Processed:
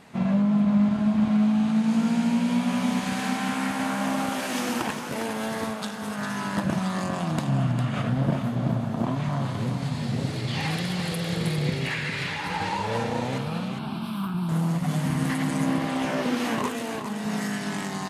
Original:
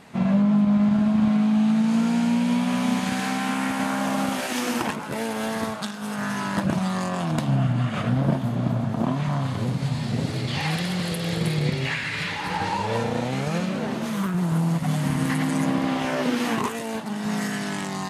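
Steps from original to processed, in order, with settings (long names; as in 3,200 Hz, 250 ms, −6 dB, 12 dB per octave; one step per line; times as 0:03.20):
0:13.38–0:14.49: phaser with its sweep stopped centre 1,900 Hz, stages 6
on a send: single-tap delay 404 ms −8 dB
on the sum: level −2.5 dB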